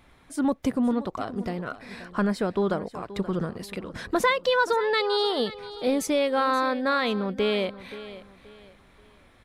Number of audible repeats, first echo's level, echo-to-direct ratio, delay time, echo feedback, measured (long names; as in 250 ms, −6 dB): 2, −15.5 dB, −15.0 dB, 528 ms, 31%